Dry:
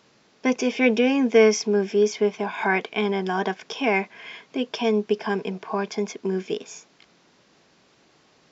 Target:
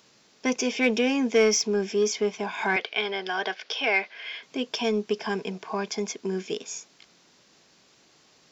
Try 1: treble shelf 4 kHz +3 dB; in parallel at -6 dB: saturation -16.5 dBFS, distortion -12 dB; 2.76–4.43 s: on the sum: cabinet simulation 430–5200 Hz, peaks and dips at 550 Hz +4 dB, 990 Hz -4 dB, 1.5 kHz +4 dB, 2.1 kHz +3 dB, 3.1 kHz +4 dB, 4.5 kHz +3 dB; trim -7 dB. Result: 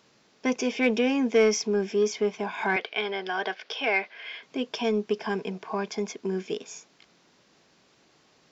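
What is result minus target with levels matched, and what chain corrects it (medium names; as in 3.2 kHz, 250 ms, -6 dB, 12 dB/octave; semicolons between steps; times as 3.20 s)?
8 kHz band -5.0 dB
treble shelf 4 kHz +12 dB; in parallel at -6 dB: saturation -16.5 dBFS, distortion -11 dB; 2.76–4.43 s: on the sum: cabinet simulation 430–5200 Hz, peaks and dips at 550 Hz +4 dB, 990 Hz -4 dB, 1.5 kHz +4 dB, 2.1 kHz +3 dB, 3.1 kHz +4 dB, 4.5 kHz +3 dB; trim -7 dB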